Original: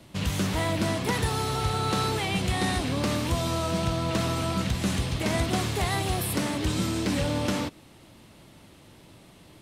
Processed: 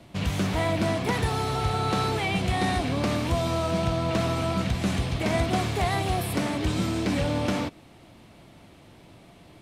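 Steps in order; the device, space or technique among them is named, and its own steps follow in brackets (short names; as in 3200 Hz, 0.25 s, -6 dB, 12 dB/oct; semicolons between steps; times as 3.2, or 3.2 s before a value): inside a helmet (high shelf 5000 Hz -7.5 dB; small resonant body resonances 700/2300 Hz, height 7 dB); gain +1 dB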